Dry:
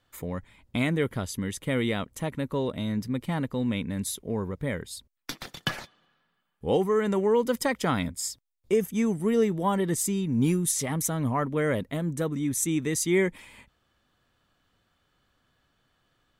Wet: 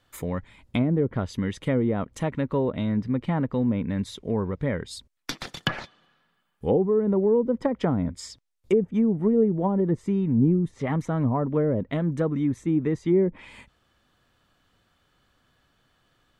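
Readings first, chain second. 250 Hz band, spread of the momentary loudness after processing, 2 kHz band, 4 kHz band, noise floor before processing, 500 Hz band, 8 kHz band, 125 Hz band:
+4.0 dB, 11 LU, −4.0 dB, −2.0 dB, −72 dBFS, +2.5 dB, −15.5 dB, +4.0 dB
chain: treble cut that deepens with the level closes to 500 Hz, closed at −21 dBFS
level +4 dB

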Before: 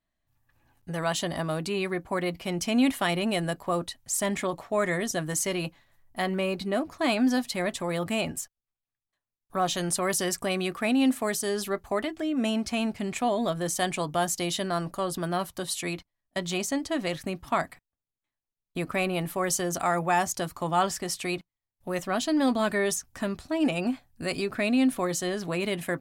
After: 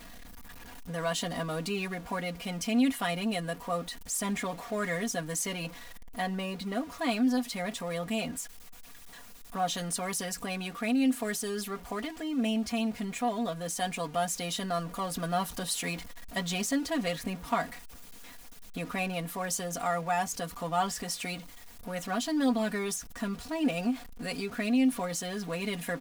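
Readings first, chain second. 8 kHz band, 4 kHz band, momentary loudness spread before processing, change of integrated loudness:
−3.5 dB, −3.0 dB, 8 LU, −4.0 dB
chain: converter with a step at zero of −36 dBFS
comb filter 4.2 ms, depth 81%
speech leveller 2 s
level −8 dB

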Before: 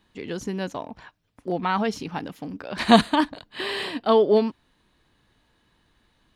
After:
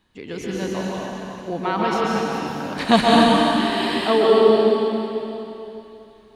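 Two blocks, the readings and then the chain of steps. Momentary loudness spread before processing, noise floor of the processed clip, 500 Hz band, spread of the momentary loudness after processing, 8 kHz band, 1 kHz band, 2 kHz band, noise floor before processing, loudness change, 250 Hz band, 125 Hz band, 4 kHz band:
18 LU, −49 dBFS, +6.0 dB, 18 LU, +5.5 dB, +5.0 dB, +5.0 dB, −67 dBFS, +4.5 dB, +4.5 dB, +4.5 dB, +5.5 dB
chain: dense smooth reverb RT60 3 s, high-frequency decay 1×, pre-delay 115 ms, DRR −5 dB
level −1 dB

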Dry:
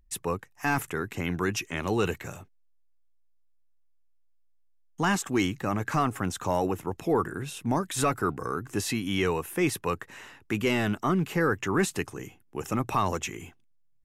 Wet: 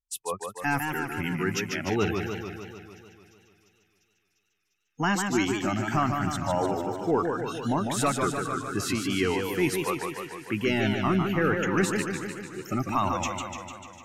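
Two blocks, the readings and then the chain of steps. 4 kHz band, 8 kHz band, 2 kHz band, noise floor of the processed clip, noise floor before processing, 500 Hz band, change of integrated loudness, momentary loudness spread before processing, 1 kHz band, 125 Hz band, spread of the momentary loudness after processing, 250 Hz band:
+1.5 dB, +0.5 dB, +2.0 dB, −74 dBFS, −62 dBFS, +1.0 dB, +1.0 dB, 10 LU, +1.5 dB, +0.5 dB, 10 LU, +1.5 dB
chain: noise reduction from a noise print of the clip's start 29 dB
delay with a high-pass on its return 349 ms, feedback 70%, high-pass 3,600 Hz, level −18.5 dB
feedback echo with a swinging delay time 149 ms, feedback 66%, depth 143 cents, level −5 dB

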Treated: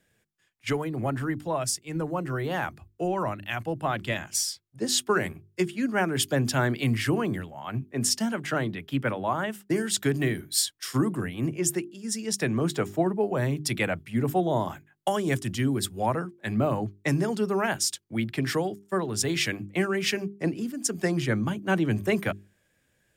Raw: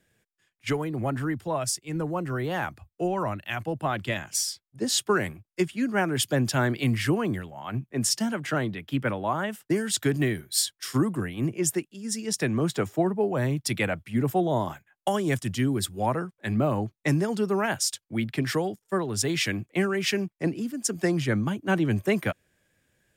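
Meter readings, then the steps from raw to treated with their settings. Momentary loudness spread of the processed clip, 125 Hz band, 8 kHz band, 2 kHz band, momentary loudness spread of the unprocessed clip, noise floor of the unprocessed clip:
6 LU, −1.0 dB, 0.0 dB, 0.0 dB, 6 LU, −82 dBFS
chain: mains-hum notches 50/100/150/200/250/300/350/400 Hz

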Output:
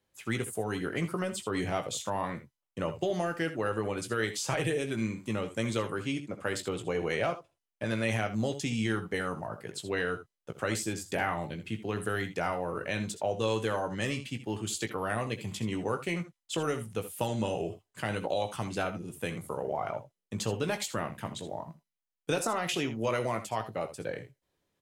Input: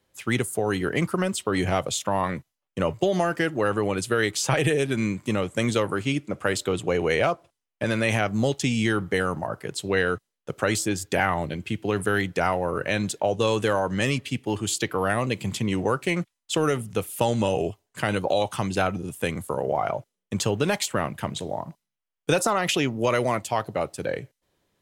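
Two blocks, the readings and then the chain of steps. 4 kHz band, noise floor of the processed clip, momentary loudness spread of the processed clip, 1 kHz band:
−7.5 dB, below −85 dBFS, 7 LU, −7.5 dB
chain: ambience of single reflections 18 ms −8.5 dB, 66 ms −15 dB, 80 ms −14 dB
level −8.5 dB

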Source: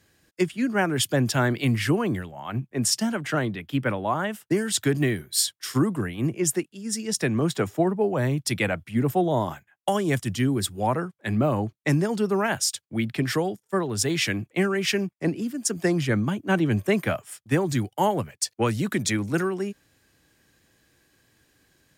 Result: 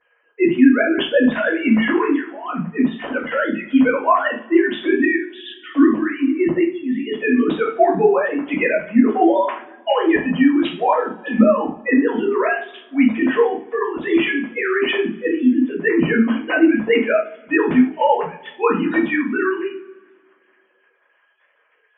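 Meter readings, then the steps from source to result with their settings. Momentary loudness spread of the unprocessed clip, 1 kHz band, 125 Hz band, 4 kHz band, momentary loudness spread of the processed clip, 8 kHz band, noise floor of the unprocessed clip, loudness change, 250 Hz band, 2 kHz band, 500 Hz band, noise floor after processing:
5 LU, +8.0 dB, −8.5 dB, −0.5 dB, 8 LU, below −40 dB, −73 dBFS, +7.5 dB, +9.5 dB, +9.0 dB, +8.0 dB, −62 dBFS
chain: three sine waves on the formant tracks
coupled-rooms reverb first 0.38 s, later 2 s, from −27 dB, DRR −8 dB

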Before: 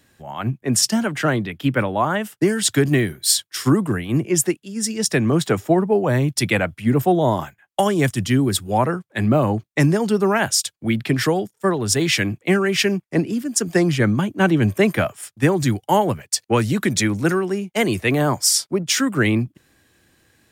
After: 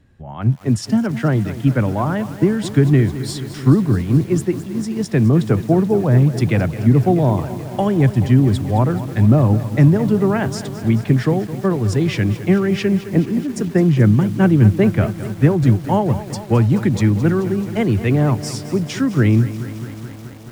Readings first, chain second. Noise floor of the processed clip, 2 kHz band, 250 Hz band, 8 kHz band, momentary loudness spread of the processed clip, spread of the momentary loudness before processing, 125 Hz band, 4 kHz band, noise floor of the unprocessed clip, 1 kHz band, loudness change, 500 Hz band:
−33 dBFS, −5.5 dB, +4.0 dB, −13.5 dB, 9 LU, 5 LU, +8.0 dB, −9.5 dB, −70 dBFS, −2.5 dB, +3.0 dB, 0.0 dB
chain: RIAA equalisation playback
feedback echo at a low word length 215 ms, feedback 80%, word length 5 bits, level −13.5 dB
level −3.5 dB

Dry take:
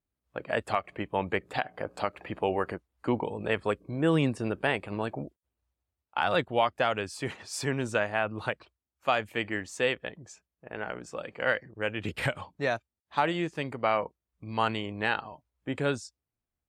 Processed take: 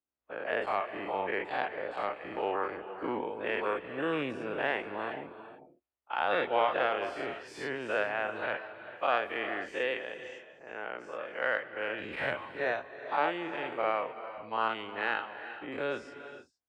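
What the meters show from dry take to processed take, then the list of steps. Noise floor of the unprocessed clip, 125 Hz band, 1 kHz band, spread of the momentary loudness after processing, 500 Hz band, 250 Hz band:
below −85 dBFS, −16.0 dB, −1.0 dB, 11 LU, −2.0 dB, −7.5 dB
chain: every bin's largest magnitude spread in time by 120 ms
harmonic generator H 3 −24 dB, 7 −44 dB, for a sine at −5.5 dBFS
three-way crossover with the lows and the highs turned down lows −15 dB, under 270 Hz, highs −19 dB, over 3,400 Hz
reverb whose tail is shaped and stops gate 470 ms rising, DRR 10.5 dB
level −5.5 dB

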